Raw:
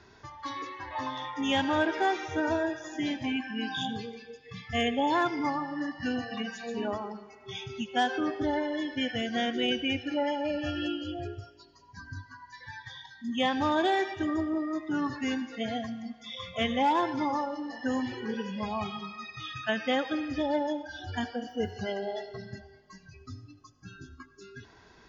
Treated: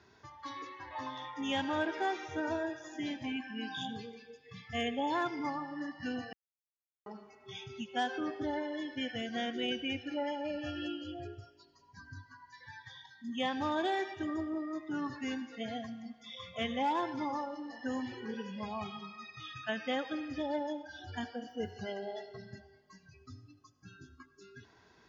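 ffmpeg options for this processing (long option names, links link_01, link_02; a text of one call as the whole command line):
ffmpeg -i in.wav -filter_complex "[0:a]asplit=3[link_01][link_02][link_03];[link_01]atrim=end=6.33,asetpts=PTS-STARTPTS,afade=type=out:start_time=6.326:duration=0.004:curve=hsin[link_04];[link_02]atrim=start=6.33:end=7.06,asetpts=PTS-STARTPTS,volume=0[link_05];[link_03]atrim=start=7.06,asetpts=PTS-STARTPTS,afade=type=in:duration=0.004:curve=hsin[link_06];[link_04][link_05][link_06]concat=n=3:v=0:a=1,highpass=71,volume=-6.5dB" out.wav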